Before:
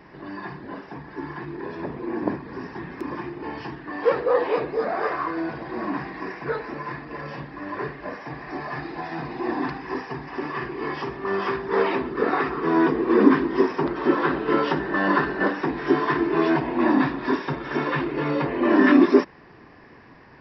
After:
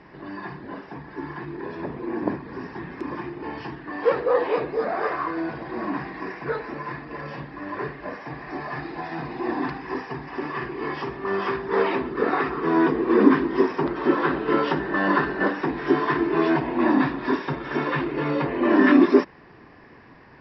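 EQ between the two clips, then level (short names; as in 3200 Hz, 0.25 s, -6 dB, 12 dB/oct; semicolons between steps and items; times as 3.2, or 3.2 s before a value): air absorption 110 m; high shelf 4400 Hz +5.5 dB; 0.0 dB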